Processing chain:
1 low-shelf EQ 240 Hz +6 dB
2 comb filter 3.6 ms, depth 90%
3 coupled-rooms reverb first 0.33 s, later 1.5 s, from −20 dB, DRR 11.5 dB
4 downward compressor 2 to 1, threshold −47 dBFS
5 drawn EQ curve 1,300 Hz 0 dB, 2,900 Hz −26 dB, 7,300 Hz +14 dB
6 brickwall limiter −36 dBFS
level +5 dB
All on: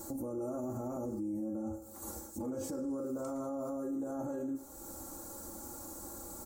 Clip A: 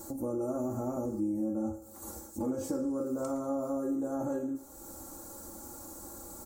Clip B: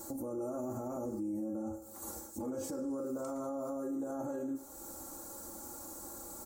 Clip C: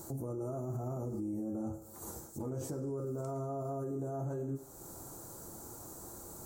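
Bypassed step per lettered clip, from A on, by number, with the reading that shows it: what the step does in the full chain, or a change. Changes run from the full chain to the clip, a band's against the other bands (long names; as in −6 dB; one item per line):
6, average gain reduction 2.5 dB
1, 125 Hz band −3.5 dB
2, 125 Hz band +12.0 dB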